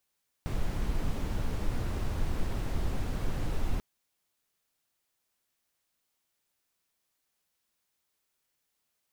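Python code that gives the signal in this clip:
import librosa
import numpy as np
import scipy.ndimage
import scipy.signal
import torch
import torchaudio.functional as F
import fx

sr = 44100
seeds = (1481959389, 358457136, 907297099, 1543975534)

y = fx.noise_colour(sr, seeds[0], length_s=3.34, colour='brown', level_db=-29.0)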